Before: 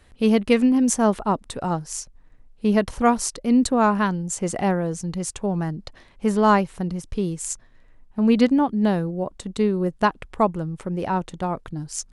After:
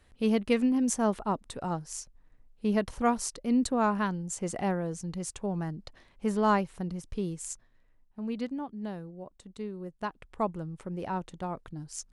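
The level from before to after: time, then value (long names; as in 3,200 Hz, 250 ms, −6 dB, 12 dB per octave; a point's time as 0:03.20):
0:07.33 −8 dB
0:08.30 −17 dB
0:09.93 −17 dB
0:10.49 −9.5 dB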